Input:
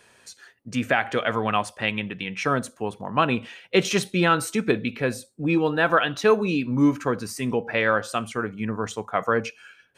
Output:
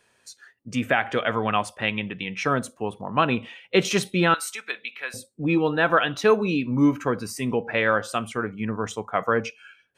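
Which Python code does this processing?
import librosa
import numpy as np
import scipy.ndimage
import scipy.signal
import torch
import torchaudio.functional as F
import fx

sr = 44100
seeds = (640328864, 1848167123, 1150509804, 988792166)

y = fx.noise_reduce_blind(x, sr, reduce_db=8)
y = fx.highpass(y, sr, hz=1300.0, slope=12, at=(4.34, 5.14))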